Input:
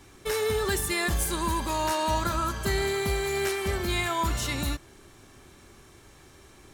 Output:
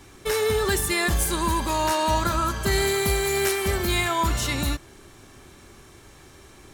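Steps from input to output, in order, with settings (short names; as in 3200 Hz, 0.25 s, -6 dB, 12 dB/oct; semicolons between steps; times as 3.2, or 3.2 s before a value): 2.71–4.03 high shelf 5700 Hz -> 11000 Hz +8.5 dB; gain +4 dB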